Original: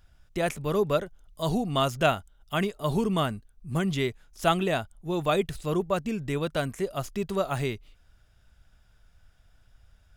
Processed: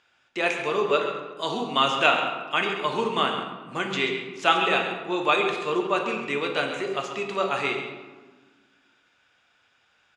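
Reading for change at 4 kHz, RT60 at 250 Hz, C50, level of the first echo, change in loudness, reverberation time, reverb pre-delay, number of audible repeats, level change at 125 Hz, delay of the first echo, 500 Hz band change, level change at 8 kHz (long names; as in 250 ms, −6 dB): +8.0 dB, 2.1 s, 4.5 dB, −10.0 dB, +3.5 dB, 1.4 s, 3 ms, 1, −11.0 dB, 134 ms, +1.5 dB, −1.5 dB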